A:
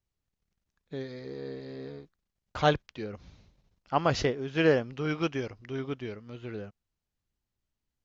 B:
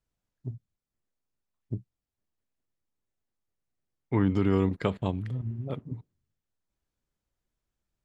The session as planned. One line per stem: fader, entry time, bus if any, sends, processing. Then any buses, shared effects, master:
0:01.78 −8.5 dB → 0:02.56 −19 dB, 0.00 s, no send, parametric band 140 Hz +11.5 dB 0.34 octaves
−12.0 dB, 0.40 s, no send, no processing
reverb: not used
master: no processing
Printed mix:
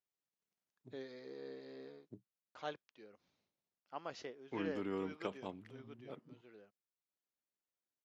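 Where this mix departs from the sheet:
stem A: missing parametric band 140 Hz +11.5 dB 0.34 octaves
master: extra high-pass filter 280 Hz 12 dB per octave

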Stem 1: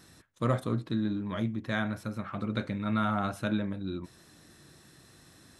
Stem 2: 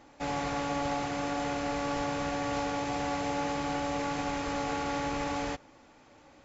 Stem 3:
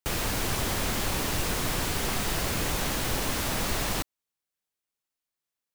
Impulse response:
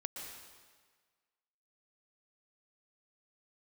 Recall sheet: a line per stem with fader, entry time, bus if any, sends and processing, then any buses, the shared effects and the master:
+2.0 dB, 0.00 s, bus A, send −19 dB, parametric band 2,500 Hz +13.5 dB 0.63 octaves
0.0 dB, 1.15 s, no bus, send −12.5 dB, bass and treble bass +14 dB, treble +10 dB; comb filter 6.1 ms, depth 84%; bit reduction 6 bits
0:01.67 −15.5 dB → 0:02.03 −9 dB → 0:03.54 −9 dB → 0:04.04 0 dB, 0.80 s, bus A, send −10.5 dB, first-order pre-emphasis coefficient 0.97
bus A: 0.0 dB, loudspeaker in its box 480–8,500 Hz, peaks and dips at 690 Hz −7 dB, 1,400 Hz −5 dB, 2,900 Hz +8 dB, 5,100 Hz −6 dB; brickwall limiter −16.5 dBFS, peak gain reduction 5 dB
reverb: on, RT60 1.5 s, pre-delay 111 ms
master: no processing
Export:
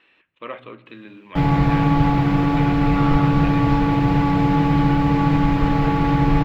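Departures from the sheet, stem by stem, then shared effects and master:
stem 2 0.0 dB → +8.0 dB
master: extra high-frequency loss of the air 450 metres

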